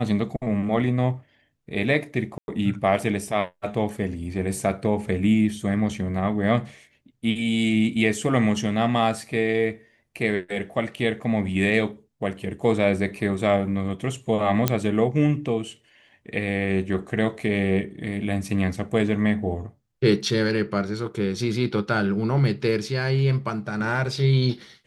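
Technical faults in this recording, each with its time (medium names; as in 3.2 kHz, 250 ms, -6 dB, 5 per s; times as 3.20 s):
2.38–2.48 s: dropout 101 ms
14.68 s: pop -4 dBFS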